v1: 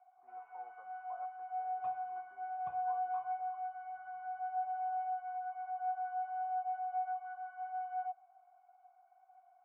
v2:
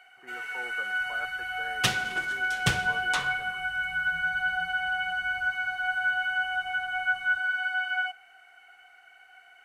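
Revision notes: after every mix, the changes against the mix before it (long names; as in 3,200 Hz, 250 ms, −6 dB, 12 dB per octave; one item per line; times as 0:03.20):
second sound +8.0 dB
master: remove formant resonators in series a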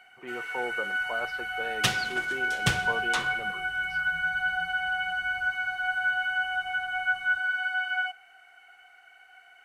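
speech: remove transistor ladder low-pass 1,700 Hz, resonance 75%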